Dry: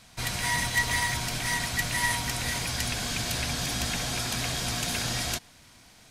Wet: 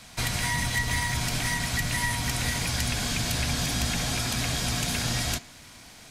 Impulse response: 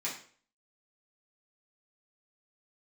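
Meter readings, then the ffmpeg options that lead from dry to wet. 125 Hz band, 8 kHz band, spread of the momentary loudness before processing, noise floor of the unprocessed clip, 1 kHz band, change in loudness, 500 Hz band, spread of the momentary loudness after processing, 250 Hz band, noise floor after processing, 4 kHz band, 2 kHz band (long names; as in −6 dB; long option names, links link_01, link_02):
+4.5 dB, +1.0 dB, 4 LU, −55 dBFS, −0.5 dB, +1.0 dB, +0.5 dB, 4 LU, +4.0 dB, −49 dBFS, +0.5 dB, −0.5 dB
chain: -filter_complex "[0:a]asplit=2[link_01][link_02];[1:a]atrim=start_sample=2205[link_03];[link_02][link_03]afir=irnorm=-1:irlink=0,volume=-16.5dB[link_04];[link_01][link_04]amix=inputs=2:normalize=0,acrossover=split=220[link_05][link_06];[link_06]acompressor=threshold=-34dB:ratio=3[link_07];[link_05][link_07]amix=inputs=2:normalize=0,volume=5.5dB"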